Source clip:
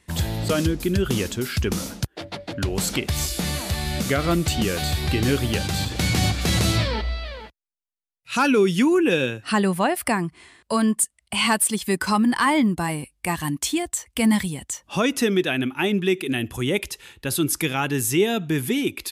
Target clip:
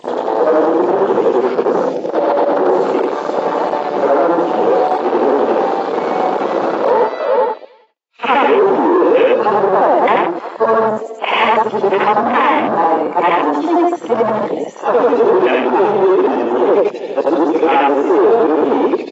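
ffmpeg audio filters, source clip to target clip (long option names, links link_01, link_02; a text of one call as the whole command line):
ffmpeg -i in.wav -filter_complex "[0:a]afftfilt=real='re':imag='-im':win_size=8192:overlap=0.75,asplit=2[link_01][link_02];[link_02]acompressor=threshold=-32dB:ratio=20,volume=2dB[link_03];[link_01][link_03]amix=inputs=2:normalize=0,highshelf=frequency=5400:gain=-11,asoftclip=type=tanh:threshold=-26dB,asplit=2[link_04][link_05];[link_05]aecho=0:1:323:0.158[link_06];[link_04][link_06]amix=inputs=2:normalize=0,volume=29.5dB,asoftclip=hard,volume=-29.5dB,highpass=frequency=340:width=0.5412,highpass=frequency=340:width=1.3066,equalizer=frequency=490:width_type=q:width=4:gain=7,equalizer=frequency=860:width_type=q:width=4:gain=5,equalizer=frequency=1500:width_type=q:width=4:gain=-7,lowpass=frequency=7700:width=0.5412,lowpass=frequency=7700:width=1.3066,acrossover=split=2900[link_07][link_08];[link_08]acompressor=threshold=-50dB:ratio=4:attack=1:release=60[link_09];[link_07][link_09]amix=inputs=2:normalize=0,afwtdn=0.0141,alimiter=level_in=24.5dB:limit=-1dB:release=50:level=0:latency=1,volume=-2.5dB" -ar 24000 -c:a aac -b:a 24k out.aac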